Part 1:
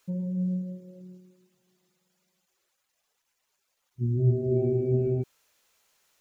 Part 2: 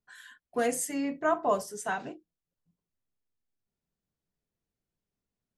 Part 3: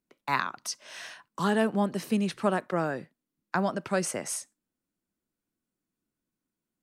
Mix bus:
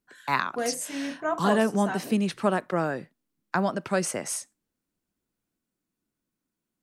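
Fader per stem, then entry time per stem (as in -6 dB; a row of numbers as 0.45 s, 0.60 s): mute, -1.5 dB, +2.0 dB; mute, 0.00 s, 0.00 s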